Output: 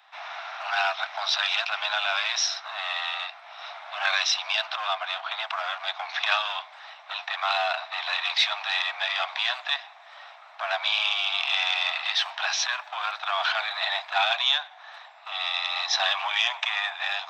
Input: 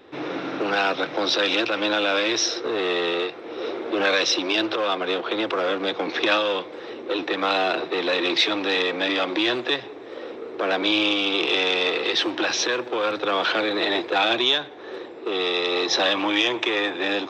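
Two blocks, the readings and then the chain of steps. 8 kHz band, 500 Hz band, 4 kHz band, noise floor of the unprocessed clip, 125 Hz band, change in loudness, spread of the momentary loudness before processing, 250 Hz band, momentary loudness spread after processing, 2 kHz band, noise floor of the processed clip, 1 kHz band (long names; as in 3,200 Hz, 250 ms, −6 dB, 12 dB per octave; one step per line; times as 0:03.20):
−2.0 dB, −14.5 dB, −2.0 dB, −39 dBFS, below −40 dB, −3.5 dB, 10 LU, below −40 dB, 13 LU, −2.0 dB, −49 dBFS, −2.0 dB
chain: Butterworth high-pass 660 Hz 96 dB per octave
level −2 dB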